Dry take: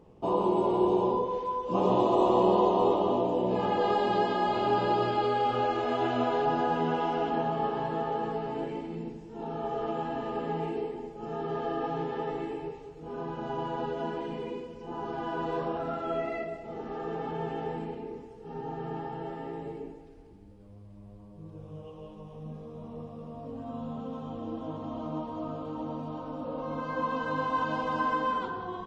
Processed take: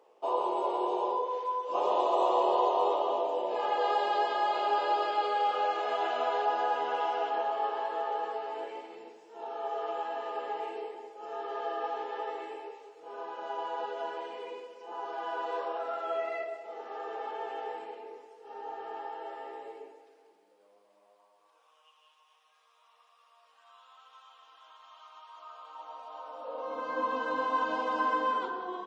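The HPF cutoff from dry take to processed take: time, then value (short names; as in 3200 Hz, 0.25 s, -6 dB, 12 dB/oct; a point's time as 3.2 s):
HPF 24 dB/oct
20.91 s 490 Hz
21.94 s 1300 Hz
25.21 s 1300 Hz
26.32 s 620 Hz
26.97 s 300 Hz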